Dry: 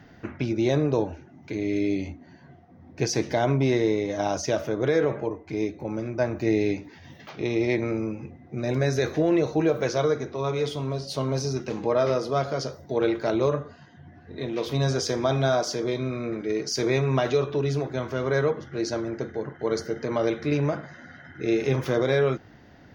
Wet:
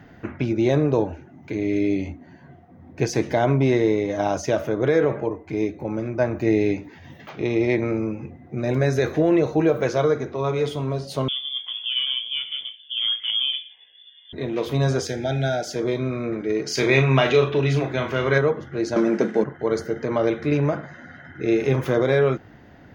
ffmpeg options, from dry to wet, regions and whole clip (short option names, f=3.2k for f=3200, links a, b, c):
-filter_complex "[0:a]asettb=1/sr,asplit=3[a][b][c];[a]atrim=end=11.284[d];[b]atrim=start=11.28:end=14.33,asetpts=PTS-STARTPTS,afade=t=in:d=0.004:c=qsin,afade=t=out:st=3.046:d=0.004:c=qsin,equalizer=f=2k:t=o:w=2.7:g=-11.5,asplit=2[e][f];[f]adelay=18,volume=-8dB[g];[e][g]amix=inputs=2:normalize=0,atrim=end_sample=134505,lowpass=f=3.1k:t=q:w=0.5098,lowpass=f=3.1k:t=q:w=0.6013,lowpass=f=3.1k:t=q:w=0.9,lowpass=f=3.1k:t=q:w=2.563,afreqshift=-3600[h];[c]atrim=start=14.326[i];[d][h]acrossfade=d=0.004:c1=hsin:c2=qsin[j];[j][i]acrossfade=d=0.004:c1=qsin:c2=hsin,asettb=1/sr,asplit=3[k][l][m];[k]atrim=end=15.074[n];[l]atrim=start=15.07:end=15.76,asetpts=PTS-STARTPTS,afade=t=in:d=0.004:c=qsin,afade=t=out:st=0.686:d=0.004:c=qsin,asuperstop=centerf=1100:order=20:qfactor=2.5,equalizer=f=470:t=o:w=2.4:g=-6[o];[m]atrim=start=15.756[p];[n][o]acrossfade=d=0.004:c1=hsin:c2=qsin[q];[q][p]acrossfade=d=0.004:c1=qsin:c2=hsin,asettb=1/sr,asplit=3[r][s][t];[r]atrim=end=16.664[u];[s]atrim=start=16.66:end=18.38,asetpts=PTS-STARTPTS,afade=t=in:d=0.004:c=qsin,afade=t=out:st=1.716:d=0.004:c=qsin,equalizer=f=2.7k:w=0.91:g=10,asplit=2[v][w];[w]adelay=37,volume=-6.5dB[x];[v][x]amix=inputs=2:normalize=0,atrim=end_sample=75852[y];[t]atrim=start=18.376[z];[u][y]acrossfade=d=0.004:c1=hsin:c2=qsin[aa];[aa][z]acrossfade=d=0.004:c1=qsin:c2=hsin,asettb=1/sr,asplit=3[ab][ac][ad];[ab]atrim=end=18.964[ae];[ac]atrim=start=18.96:end=19.44,asetpts=PTS-STARTPTS,afade=t=in:d=0.004:c=qsin,afade=t=out:st=0.476:d=0.004:c=qsin,acontrast=77,aeval=exprs='sgn(val(0))*max(abs(val(0))-0.00355,0)':c=same,highpass=f=190:w=0.5412,highpass=f=190:w=1.3066,equalizer=f=200:t=q:w=4:g=10,equalizer=f=2.6k:t=q:w=4:g=4,equalizer=f=5.6k:t=q:w=4:g=9,lowpass=f=8.2k:w=0.5412,lowpass=f=8.2k:w=1.3066[af];[ad]atrim=start=19.436[ag];[ae][af]acrossfade=d=0.004:c1=hsin:c2=qsin[ah];[ah][ag]acrossfade=d=0.004:c1=qsin:c2=hsin,equalizer=f=4.8k:w=1.5:g=-7,bandreject=f=5.7k:w=20,volume=3.5dB"